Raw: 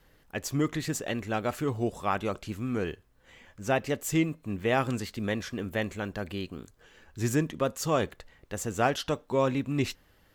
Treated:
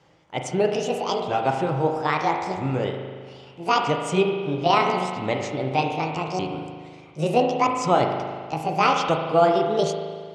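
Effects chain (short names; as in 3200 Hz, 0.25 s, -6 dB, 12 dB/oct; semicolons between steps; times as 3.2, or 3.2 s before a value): repeated pitch sweeps +11 st, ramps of 1.278 s; speaker cabinet 140–6800 Hz, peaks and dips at 140 Hz +7 dB, 220 Hz -7 dB, 800 Hz +6 dB, 1700 Hz -9 dB, 4000 Hz -6 dB; spring tank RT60 1.8 s, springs 38 ms, chirp 35 ms, DRR 3 dB; gain +6.5 dB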